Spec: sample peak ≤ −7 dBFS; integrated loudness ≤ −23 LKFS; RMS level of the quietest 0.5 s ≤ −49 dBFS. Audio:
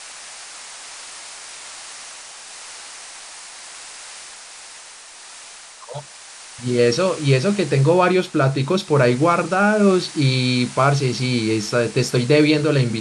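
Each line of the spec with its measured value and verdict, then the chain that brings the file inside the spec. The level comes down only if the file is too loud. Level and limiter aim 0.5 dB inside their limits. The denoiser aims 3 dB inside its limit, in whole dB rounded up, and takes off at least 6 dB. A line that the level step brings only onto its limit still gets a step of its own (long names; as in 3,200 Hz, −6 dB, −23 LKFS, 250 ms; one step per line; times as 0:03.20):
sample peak −2.5 dBFS: out of spec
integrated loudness −18.0 LKFS: out of spec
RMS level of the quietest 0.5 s −41 dBFS: out of spec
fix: broadband denoise 6 dB, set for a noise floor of −41 dBFS
level −5.5 dB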